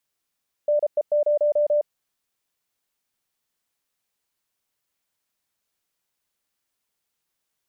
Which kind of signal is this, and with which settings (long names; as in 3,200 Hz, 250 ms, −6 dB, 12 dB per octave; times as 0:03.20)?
Morse code "NE0" 33 words per minute 592 Hz −16.5 dBFS